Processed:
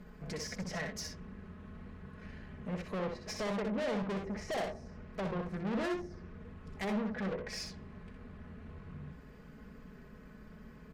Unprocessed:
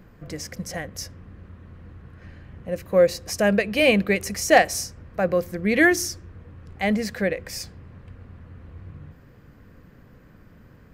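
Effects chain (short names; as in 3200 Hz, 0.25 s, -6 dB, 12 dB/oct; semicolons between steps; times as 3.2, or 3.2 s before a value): comb 4.7 ms, depth 81%; treble ducked by the level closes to 750 Hz, closed at -19 dBFS; tube stage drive 30 dB, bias 0.35; on a send: tapped delay 62/80 ms -5.5/-13 dB; on the sum: Doppler distortion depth 0.26 ms; gain -4 dB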